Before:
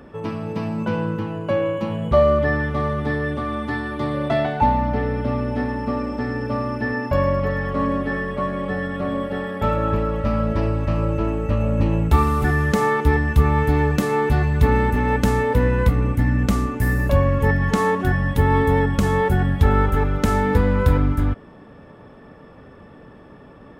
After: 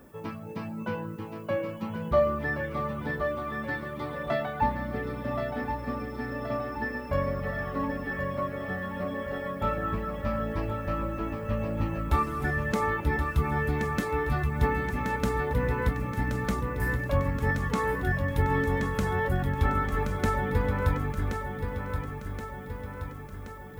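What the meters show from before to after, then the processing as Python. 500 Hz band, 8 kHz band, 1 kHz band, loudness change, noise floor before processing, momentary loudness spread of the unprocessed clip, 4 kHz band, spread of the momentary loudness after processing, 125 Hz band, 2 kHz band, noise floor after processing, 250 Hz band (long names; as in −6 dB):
−9.0 dB, −8.0 dB, −7.5 dB, −9.0 dB, −44 dBFS, 7 LU, −8.0 dB, 8 LU, −10.0 dB, −5.5 dB, −40 dBFS, −10.0 dB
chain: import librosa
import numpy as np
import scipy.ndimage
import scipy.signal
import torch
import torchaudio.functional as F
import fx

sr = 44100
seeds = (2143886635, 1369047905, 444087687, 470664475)

y = fx.dereverb_blind(x, sr, rt60_s=0.8)
y = fx.notch(y, sr, hz=2900.0, q=23.0)
y = fx.dynamic_eq(y, sr, hz=1700.0, q=0.71, threshold_db=-38.0, ratio=4.0, max_db=4)
y = fx.dmg_noise_colour(y, sr, seeds[0], colour='violet', level_db=-56.0)
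y = fx.doubler(y, sr, ms=22.0, db=-13)
y = fx.echo_feedback(y, sr, ms=1075, feedback_pct=57, wet_db=-7)
y = y * librosa.db_to_amplitude(-9.0)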